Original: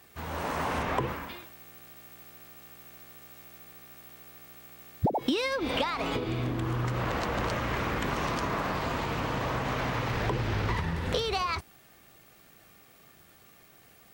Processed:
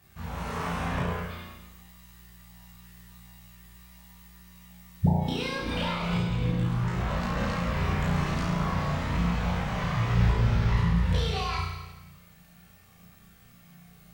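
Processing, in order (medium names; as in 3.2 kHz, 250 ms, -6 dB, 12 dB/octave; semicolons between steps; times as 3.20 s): resonant low shelf 230 Hz +7.5 dB, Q 3; flutter echo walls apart 5.9 m, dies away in 1.1 s; chorus voices 6, 0.28 Hz, delay 20 ms, depth 2.7 ms; trim -2.5 dB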